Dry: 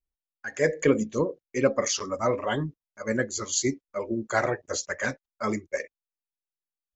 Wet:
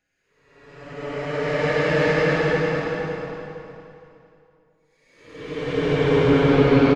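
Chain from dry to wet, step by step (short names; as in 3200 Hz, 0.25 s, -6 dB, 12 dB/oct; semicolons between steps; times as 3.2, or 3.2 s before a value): LPF 4900 Hz 24 dB/oct; low shelf 220 Hz +12 dB; added harmonics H 5 -30 dB, 7 -16 dB, 8 -34 dB, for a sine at -4.5 dBFS; in parallel at -9.5 dB: crossover distortion -37.5 dBFS; on the sum: Paulstretch 19×, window 0.10 s, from 0.54; on a send: feedback echo 0.465 s, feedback 27%, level -5.5 dB; on the sum: gain -4 dB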